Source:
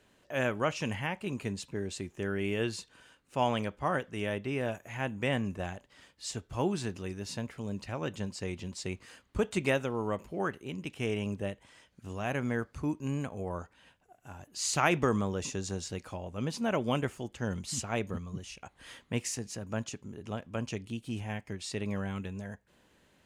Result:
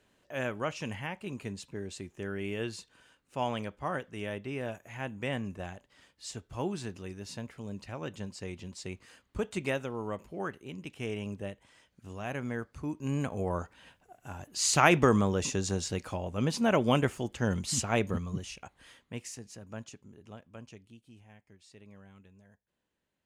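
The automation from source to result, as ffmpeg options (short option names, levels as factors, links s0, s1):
-af "volume=1.68,afade=t=in:st=12.9:d=0.42:silence=0.398107,afade=t=out:st=18.33:d=0.6:silence=0.251189,afade=t=out:st=19.81:d=1.34:silence=0.266073"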